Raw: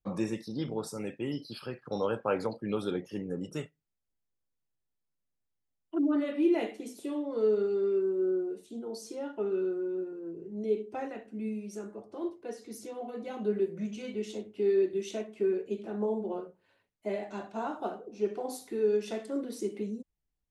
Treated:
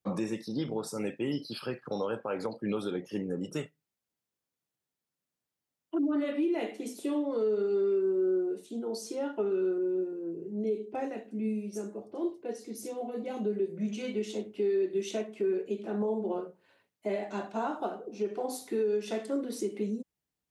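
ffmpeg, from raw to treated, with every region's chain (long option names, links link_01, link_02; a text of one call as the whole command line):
ffmpeg -i in.wav -filter_complex "[0:a]asettb=1/sr,asplit=3[link_01][link_02][link_03];[link_01]atrim=end=9.784[link_04];[link_02]atrim=start=9.78:end=13.89,asetpts=PTS-STARTPTS,afade=type=in:duration=0.004:curve=qsin,afade=type=out:start_time=4.106:duration=0.004:curve=qsin,equalizer=frequency=1300:width_type=o:width=1.3:gain=-6.5,acrossover=split=3700[link_05][link_06];[link_06]adelay=30[link_07];[link_05][link_07]amix=inputs=2:normalize=0,atrim=end_sample=181251[link_08];[link_03]atrim=start=13.886[link_09];[link_04][link_08]acrossfade=duration=0.004:curve1=hsin:curve2=qsin[link_10];[link_10][link_09]acrossfade=duration=0.004:curve1=qsin:curve2=hsin,highpass=130,alimiter=level_in=2.5dB:limit=-24dB:level=0:latency=1:release=236,volume=-2.5dB,volume=4dB" out.wav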